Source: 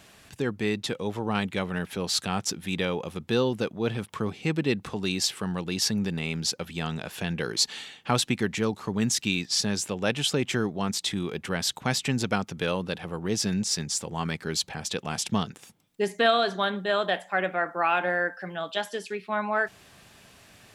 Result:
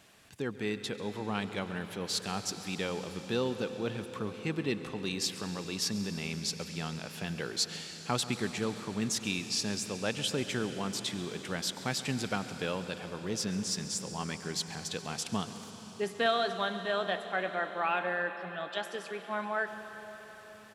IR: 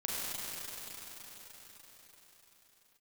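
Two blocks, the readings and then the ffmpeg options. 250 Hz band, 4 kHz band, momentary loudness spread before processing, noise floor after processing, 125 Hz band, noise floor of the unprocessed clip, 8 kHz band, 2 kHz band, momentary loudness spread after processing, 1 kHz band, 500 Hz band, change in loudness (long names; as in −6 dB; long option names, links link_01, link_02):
−6.5 dB, −6.0 dB, 7 LU, −48 dBFS, −7.5 dB, −54 dBFS, −6.0 dB, −6.0 dB, 7 LU, −6.0 dB, −6.0 dB, −6.0 dB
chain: -filter_complex "[0:a]lowshelf=frequency=78:gain=-6,aecho=1:1:97:0.0708,asplit=2[link_01][link_02];[1:a]atrim=start_sample=2205,adelay=137[link_03];[link_02][link_03]afir=irnorm=-1:irlink=0,volume=-15dB[link_04];[link_01][link_04]amix=inputs=2:normalize=0,volume=-6.5dB"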